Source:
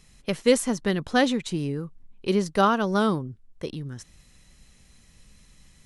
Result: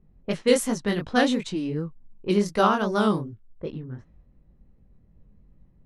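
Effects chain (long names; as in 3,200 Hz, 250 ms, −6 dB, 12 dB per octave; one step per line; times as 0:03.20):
chorus effect 2.7 Hz, delay 18 ms, depth 6.7 ms
low-pass that shuts in the quiet parts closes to 480 Hz, open at −24 dBFS
level +3 dB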